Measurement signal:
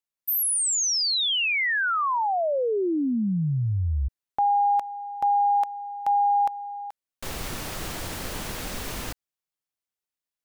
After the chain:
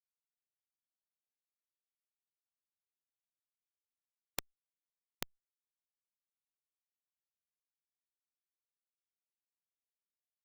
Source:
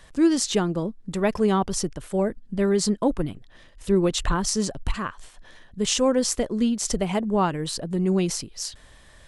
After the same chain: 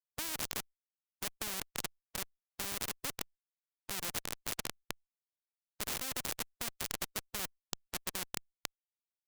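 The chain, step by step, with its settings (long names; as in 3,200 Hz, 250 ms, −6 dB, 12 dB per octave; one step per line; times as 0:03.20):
dynamic equaliser 990 Hz, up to −5 dB, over −36 dBFS, Q 2.2
comparator with hysteresis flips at −18.5 dBFS
every bin compressed towards the loudest bin 4 to 1
level +6.5 dB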